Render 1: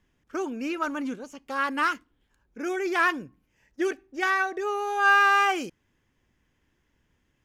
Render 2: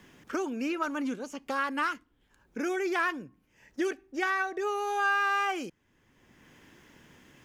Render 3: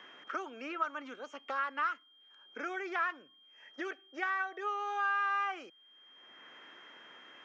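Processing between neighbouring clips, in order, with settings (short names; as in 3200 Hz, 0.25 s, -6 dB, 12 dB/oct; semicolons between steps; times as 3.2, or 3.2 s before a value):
three-band squash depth 70%; gain -4 dB
speaker cabinet 480–5300 Hz, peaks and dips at 660 Hz +4 dB, 1300 Hz +9 dB, 1900 Hz +3 dB, 4600 Hz -7 dB; whine 3200 Hz -55 dBFS; three-band squash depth 40%; gain -8 dB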